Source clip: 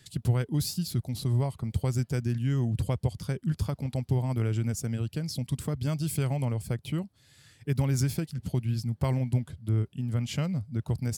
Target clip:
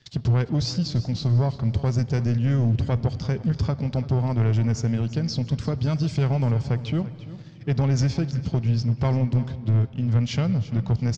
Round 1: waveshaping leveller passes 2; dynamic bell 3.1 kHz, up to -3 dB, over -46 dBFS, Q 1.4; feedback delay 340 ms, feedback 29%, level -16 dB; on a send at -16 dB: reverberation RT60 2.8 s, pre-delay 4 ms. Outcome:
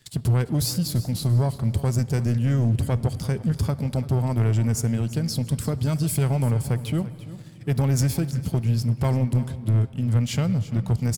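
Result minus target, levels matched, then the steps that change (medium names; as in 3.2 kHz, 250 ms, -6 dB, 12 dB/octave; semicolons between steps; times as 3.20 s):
8 kHz band +8.5 dB
add after dynamic bell: steep low-pass 6.2 kHz 48 dB/octave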